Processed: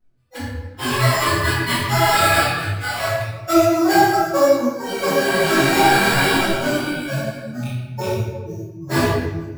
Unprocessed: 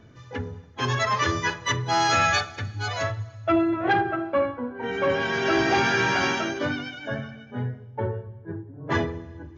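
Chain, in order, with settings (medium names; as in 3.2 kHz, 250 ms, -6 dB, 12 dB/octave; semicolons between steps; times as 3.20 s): rattle on loud lows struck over -25 dBFS, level -24 dBFS; spectral noise reduction 28 dB; sample-rate reducer 6.2 kHz, jitter 0%; reverberation RT60 1.2 s, pre-delay 5 ms, DRR -11 dB; detune thickener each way 38 cents; trim -1 dB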